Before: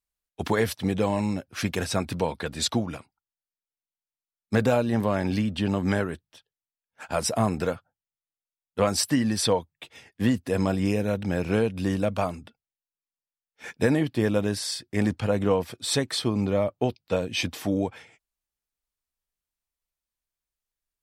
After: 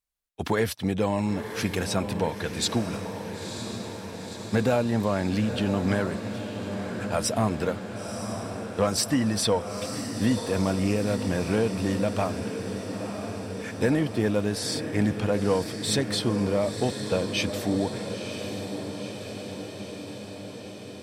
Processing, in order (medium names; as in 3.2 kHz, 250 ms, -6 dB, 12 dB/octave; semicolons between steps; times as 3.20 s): echo that smears into a reverb 972 ms, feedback 70%, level -9 dB; saturation -12.5 dBFS, distortion -23 dB